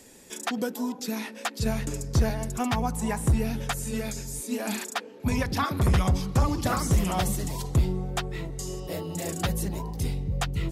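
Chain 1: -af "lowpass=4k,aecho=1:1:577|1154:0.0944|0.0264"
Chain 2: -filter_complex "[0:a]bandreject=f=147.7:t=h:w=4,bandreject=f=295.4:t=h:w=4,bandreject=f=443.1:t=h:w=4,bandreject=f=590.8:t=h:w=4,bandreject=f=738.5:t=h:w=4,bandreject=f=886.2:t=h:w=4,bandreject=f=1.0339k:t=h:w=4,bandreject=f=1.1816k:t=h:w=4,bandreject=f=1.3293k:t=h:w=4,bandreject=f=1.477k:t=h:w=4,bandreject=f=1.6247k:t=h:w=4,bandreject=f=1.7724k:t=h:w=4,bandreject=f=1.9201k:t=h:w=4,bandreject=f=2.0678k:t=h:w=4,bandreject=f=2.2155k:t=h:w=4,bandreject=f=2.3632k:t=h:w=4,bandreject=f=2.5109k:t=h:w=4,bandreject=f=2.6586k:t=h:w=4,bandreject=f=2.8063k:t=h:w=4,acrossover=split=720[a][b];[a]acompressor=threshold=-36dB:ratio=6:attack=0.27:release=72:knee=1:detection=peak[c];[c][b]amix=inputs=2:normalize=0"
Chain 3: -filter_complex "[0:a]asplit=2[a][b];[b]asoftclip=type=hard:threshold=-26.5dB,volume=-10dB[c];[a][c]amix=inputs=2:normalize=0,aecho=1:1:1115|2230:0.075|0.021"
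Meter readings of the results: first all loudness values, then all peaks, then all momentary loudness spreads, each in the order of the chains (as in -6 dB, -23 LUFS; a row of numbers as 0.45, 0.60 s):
-29.0, -34.0, -27.0 LUFS; -14.5, -16.5, -13.5 dBFS; 10, 7, 8 LU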